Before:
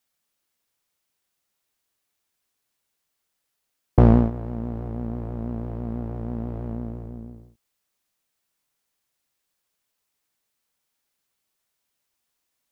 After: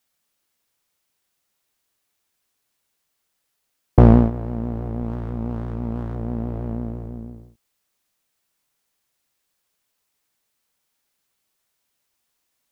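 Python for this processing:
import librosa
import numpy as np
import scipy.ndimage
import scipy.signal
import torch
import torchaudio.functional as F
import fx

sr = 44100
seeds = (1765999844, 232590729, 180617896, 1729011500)

y = fx.running_max(x, sr, window=33, at=(5.01, 6.15))
y = y * librosa.db_to_amplitude(3.5)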